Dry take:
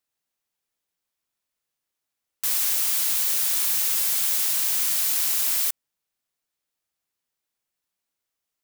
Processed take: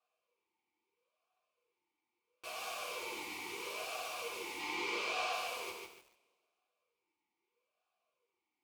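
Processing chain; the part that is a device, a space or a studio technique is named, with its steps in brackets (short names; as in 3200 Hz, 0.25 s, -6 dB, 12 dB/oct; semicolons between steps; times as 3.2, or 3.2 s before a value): 4.59–5.33 air absorption 110 m; talk box (tube stage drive 34 dB, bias 0.25; vowel sweep a-u 0.76 Hz); two-slope reverb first 0.22 s, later 1.6 s, from -21 dB, DRR -5.5 dB; lo-fi delay 0.146 s, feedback 35%, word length 12-bit, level -3 dB; gain +11.5 dB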